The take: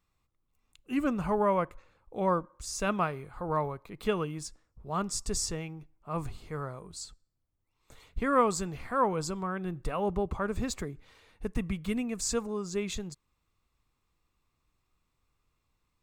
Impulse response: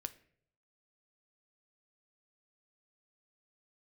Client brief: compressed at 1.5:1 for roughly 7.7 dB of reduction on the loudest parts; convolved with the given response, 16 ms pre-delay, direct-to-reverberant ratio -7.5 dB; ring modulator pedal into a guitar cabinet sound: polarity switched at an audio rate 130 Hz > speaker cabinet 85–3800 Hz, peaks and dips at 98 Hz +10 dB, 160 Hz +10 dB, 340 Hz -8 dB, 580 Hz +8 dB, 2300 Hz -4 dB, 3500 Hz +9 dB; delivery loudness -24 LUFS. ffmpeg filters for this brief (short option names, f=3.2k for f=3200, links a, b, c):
-filter_complex "[0:a]acompressor=threshold=-42dB:ratio=1.5,asplit=2[a][b];[1:a]atrim=start_sample=2205,adelay=16[c];[b][c]afir=irnorm=-1:irlink=0,volume=10.5dB[d];[a][d]amix=inputs=2:normalize=0,aeval=exprs='val(0)*sgn(sin(2*PI*130*n/s))':c=same,highpass=85,equalizer=f=98:t=q:w=4:g=10,equalizer=f=160:t=q:w=4:g=10,equalizer=f=340:t=q:w=4:g=-8,equalizer=f=580:t=q:w=4:g=8,equalizer=f=2.3k:t=q:w=4:g=-4,equalizer=f=3.5k:t=q:w=4:g=9,lowpass=f=3.8k:w=0.5412,lowpass=f=3.8k:w=1.3066,volume=4dB"